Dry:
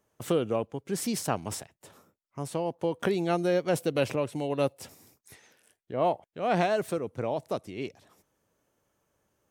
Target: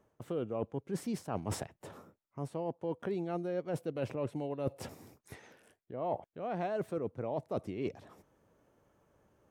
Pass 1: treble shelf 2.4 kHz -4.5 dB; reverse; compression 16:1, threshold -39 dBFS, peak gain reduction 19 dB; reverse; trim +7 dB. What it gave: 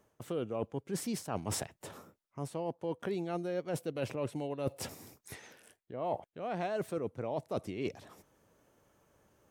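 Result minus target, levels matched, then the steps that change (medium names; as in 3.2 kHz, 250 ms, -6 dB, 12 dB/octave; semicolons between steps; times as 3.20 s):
4 kHz band +5.5 dB
change: treble shelf 2.4 kHz -14 dB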